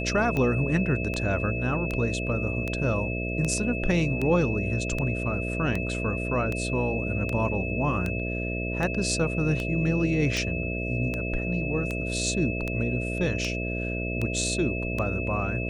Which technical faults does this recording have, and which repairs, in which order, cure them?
buzz 60 Hz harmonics 11 -31 dBFS
tick 78 rpm -16 dBFS
tone 2600 Hz -33 dBFS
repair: de-click; notch 2600 Hz, Q 30; de-hum 60 Hz, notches 11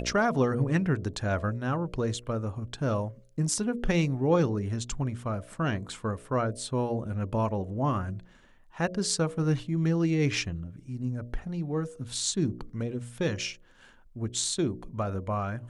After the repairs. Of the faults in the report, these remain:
none

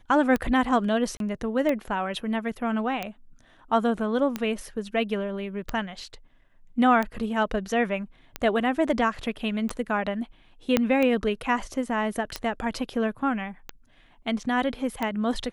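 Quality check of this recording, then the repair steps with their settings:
tick 45 rpm -14 dBFS
1.17–1.2 gap 32 ms
10.77 pop -6 dBFS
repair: de-click; interpolate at 1.17, 32 ms

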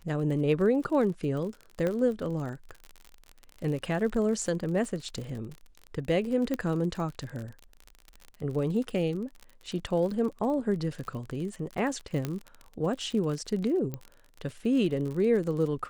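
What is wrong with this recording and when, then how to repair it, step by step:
crackle 45/s -35 dBFS
1.87 pop -18 dBFS
6.54 pop -17 dBFS
12.25 pop -17 dBFS
13.94 pop -21 dBFS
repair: de-click

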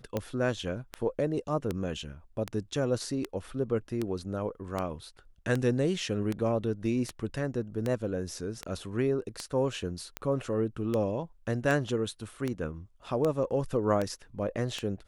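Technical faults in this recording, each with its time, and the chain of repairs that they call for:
tick 78 rpm -17 dBFS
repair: de-click

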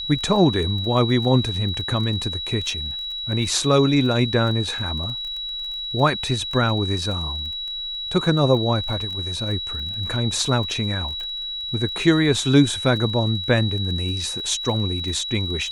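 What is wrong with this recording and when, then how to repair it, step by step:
crackle 24/s -30 dBFS
tone 3900 Hz -27 dBFS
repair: de-click; notch 3900 Hz, Q 30

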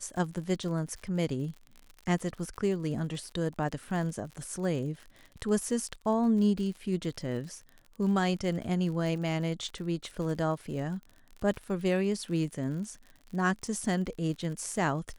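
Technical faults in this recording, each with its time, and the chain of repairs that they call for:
crackle 52/s -39 dBFS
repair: de-click

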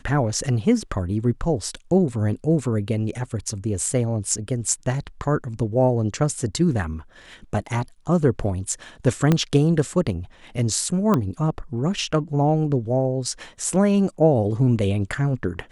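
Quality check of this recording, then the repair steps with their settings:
9.32 pop -6 dBFS
11.14 pop -9 dBFS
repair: de-click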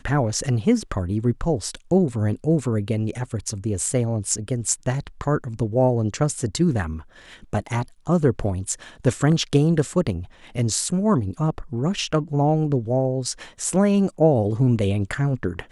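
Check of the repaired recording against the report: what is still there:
9.32 pop

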